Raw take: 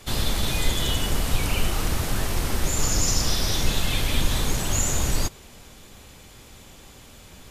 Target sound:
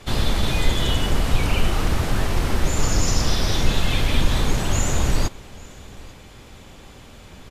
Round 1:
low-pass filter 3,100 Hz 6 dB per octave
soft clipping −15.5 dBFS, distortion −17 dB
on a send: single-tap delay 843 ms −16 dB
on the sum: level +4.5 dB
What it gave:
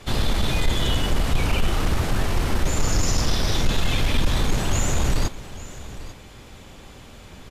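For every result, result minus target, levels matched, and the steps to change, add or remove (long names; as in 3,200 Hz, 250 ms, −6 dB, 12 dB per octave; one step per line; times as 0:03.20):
soft clipping: distortion +20 dB; echo-to-direct +7 dB
change: soft clipping −3.5 dBFS, distortion −37 dB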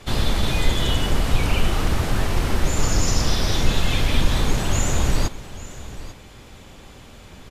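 echo-to-direct +7 dB
change: single-tap delay 843 ms −23 dB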